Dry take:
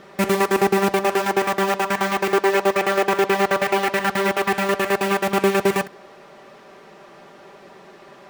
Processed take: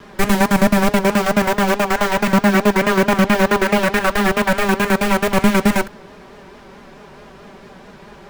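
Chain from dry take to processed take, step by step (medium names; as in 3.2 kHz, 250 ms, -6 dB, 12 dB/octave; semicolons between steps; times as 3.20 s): frequency shift -190 Hz; vibrato 4.6 Hz 71 cents; trim +4.5 dB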